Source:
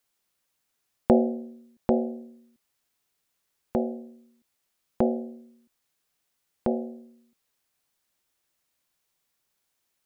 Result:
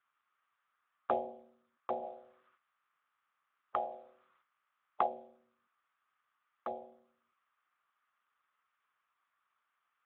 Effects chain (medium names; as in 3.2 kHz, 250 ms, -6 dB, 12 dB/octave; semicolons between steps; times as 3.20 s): 2.02–5.06 s: spectral peaks clipped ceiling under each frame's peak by 15 dB; ladder band-pass 1.3 kHz, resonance 70%; trim +13.5 dB; Speex 11 kbps 8 kHz